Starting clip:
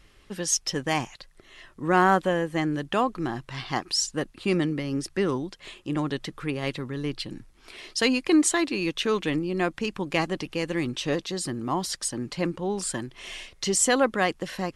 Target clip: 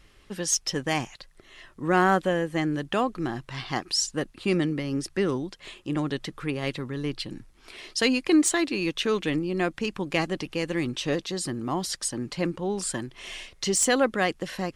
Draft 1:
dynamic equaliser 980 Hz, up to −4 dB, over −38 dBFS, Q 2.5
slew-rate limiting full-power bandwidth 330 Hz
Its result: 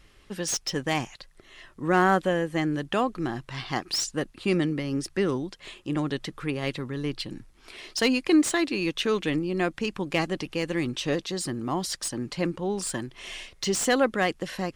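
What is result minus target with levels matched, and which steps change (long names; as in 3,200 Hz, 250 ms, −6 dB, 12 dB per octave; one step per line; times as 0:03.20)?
slew-rate limiting: distortion +12 dB
change: slew-rate limiting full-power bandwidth 981.5 Hz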